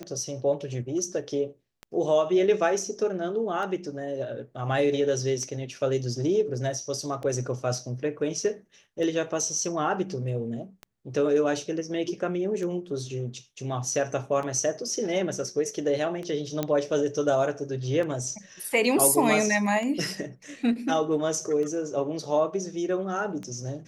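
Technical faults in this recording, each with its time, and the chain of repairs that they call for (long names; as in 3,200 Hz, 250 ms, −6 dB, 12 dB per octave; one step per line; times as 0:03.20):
scratch tick 33 1/3 rpm −23 dBFS
0:16.63: click −13 dBFS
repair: click removal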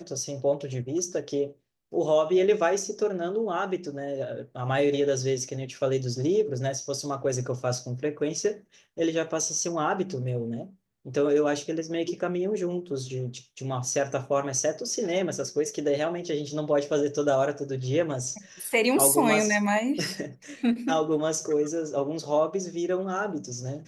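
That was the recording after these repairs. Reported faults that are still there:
none of them is left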